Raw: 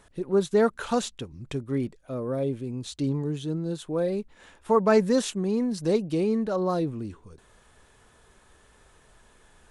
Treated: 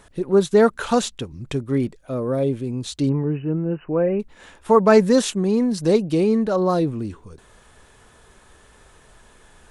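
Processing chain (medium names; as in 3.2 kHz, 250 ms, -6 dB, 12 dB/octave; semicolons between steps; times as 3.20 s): 3.09–4.20 s: brick-wall FIR low-pass 3 kHz; trim +6.5 dB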